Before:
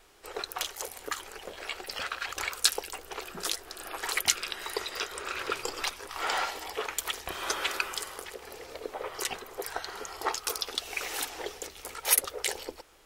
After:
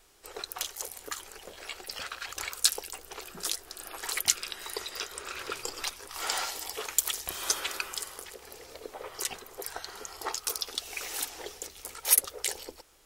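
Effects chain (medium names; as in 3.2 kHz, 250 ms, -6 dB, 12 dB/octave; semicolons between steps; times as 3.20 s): tone controls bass +3 dB, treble +7 dB, from 6.13 s treble +14 dB, from 7.59 s treble +7 dB; trim -5 dB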